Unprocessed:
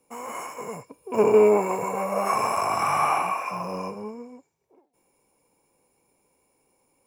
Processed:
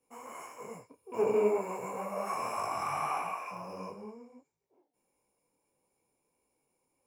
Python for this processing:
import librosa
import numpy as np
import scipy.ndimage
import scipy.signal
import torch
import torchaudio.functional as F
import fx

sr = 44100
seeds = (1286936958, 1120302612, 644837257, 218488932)

y = fx.detune_double(x, sr, cents=53)
y = y * librosa.db_to_amplitude(-7.0)